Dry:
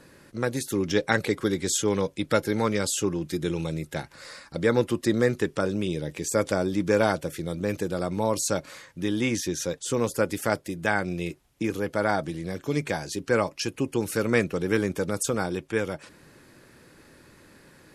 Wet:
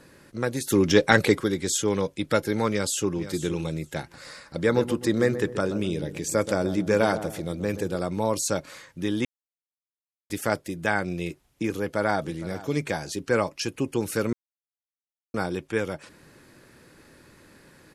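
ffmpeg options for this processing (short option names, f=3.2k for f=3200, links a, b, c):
-filter_complex "[0:a]asettb=1/sr,asplit=3[a][b][c];[a]atrim=end=0.674[d];[b]atrim=start=0.67:end=1.41,asetpts=PTS-STARTPTS,afade=t=in:d=0.004:c=qsin,afade=t=out:st=0.736:d=0.004:c=qsin,acontrast=54[e];[c]atrim=start=1.406[f];[d][e]acrossfade=d=0.004:c1=hsin:c2=qsin[g];[g][f]acrossfade=d=0.004:c1=qsin:c2=hsin,asplit=2[h][i];[i]afade=t=in:st=2.69:d=0.01,afade=t=out:st=3.21:d=0.01,aecho=0:1:470|940:0.223872|0.0223872[j];[h][j]amix=inputs=2:normalize=0,asettb=1/sr,asplit=3[k][l][m];[k]atrim=end=4.014[n];[l]atrim=start=4.01:end=7.96,asetpts=PTS-STARTPTS,afade=t=in:d=0.004:c=qsin,afade=t=out:st=3.946:d=0.004:c=qsin,asplit=2[o][p];[p]adelay=128,lowpass=f=830:p=1,volume=-9.5dB,asplit=2[q][r];[r]adelay=128,lowpass=f=830:p=1,volume=0.47,asplit=2[s][t];[t]adelay=128,lowpass=f=830:p=1,volume=0.47,asplit=2[u][v];[v]adelay=128,lowpass=f=830:p=1,volume=0.47,asplit=2[w][x];[x]adelay=128,lowpass=f=830:p=1,volume=0.47[y];[o][q][s][u][w][y]amix=inputs=6:normalize=0,atrim=end_sample=174195[z];[m]atrim=start=7.956[aa];[n][z]acrossfade=d=0.004:c1=hsin:c2=qsin[ab];[ab][aa]acrossfade=d=0.004:c1=qsin:c2=hsin,asplit=2[ac][ad];[ad]afade=t=in:st=11.75:d=0.01,afade=t=out:st=12.2:d=0.01,aecho=0:1:460|920:0.141254|0.0211881[ae];[ac][ae]amix=inputs=2:normalize=0,asplit=5[af][ag][ah][ai][aj];[af]atrim=end=9.25,asetpts=PTS-STARTPTS,afade=t=out:st=9.246:d=0.004:c=hsin[ak];[ag]atrim=start=9.25:end=10.3,asetpts=PTS-STARTPTS,volume=0[al];[ah]atrim=start=10.3:end=14.33,asetpts=PTS-STARTPTS,afade=t=in:d=0.004:c=hsin,afade=t=out:st=4.026:d=0.004:c=hsin[am];[ai]atrim=start=14.33:end=15.34,asetpts=PTS-STARTPTS,volume=0[an];[aj]atrim=start=15.34,asetpts=PTS-STARTPTS,afade=t=in:d=0.004:c=hsin[ao];[ak][al][am][an][ao]concat=n=5:v=0:a=1"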